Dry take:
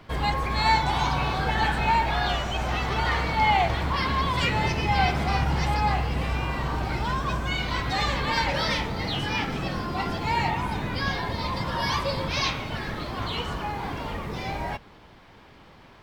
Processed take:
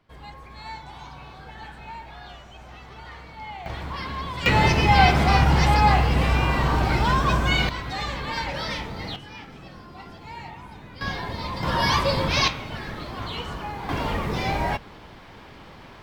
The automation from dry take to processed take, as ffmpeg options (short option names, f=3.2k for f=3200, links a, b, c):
-af "asetnsamples=n=441:p=0,asendcmd='3.66 volume volume -6.5dB;4.46 volume volume 6.5dB;7.69 volume volume -4dB;9.16 volume volume -13.5dB;11.01 volume volume -2dB;11.63 volume volume 5dB;12.48 volume volume -2dB;13.89 volume volume 6dB',volume=-16.5dB"